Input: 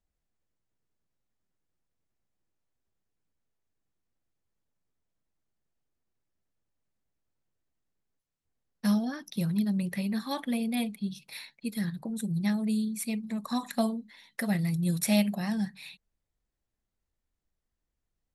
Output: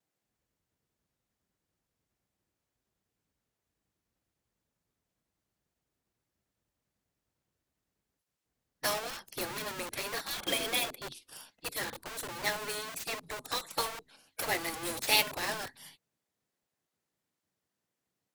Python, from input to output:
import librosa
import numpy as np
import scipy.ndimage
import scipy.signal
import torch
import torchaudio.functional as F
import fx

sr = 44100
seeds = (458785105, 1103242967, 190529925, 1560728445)

p1 = fx.small_body(x, sr, hz=(350.0, 510.0, 3300.0), ring_ms=50, db=16, at=(10.37, 11.02))
p2 = fx.vibrato(p1, sr, rate_hz=1.4, depth_cents=50.0)
p3 = (np.mod(10.0 ** (32.5 / 20.0) * p2 + 1.0, 2.0) - 1.0) / 10.0 ** (32.5 / 20.0)
p4 = p2 + F.gain(torch.from_numpy(p3), -6.0).numpy()
p5 = fx.spec_gate(p4, sr, threshold_db=-15, keep='weak')
p6 = fx.upward_expand(p5, sr, threshold_db=-46.0, expansion=1.5)
y = F.gain(torch.from_numpy(p6), 8.5).numpy()